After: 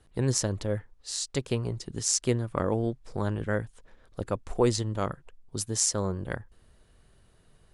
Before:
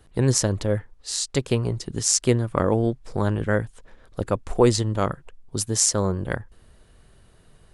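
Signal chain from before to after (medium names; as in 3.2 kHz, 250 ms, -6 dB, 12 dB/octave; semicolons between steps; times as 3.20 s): elliptic low-pass 11 kHz; trim -5.5 dB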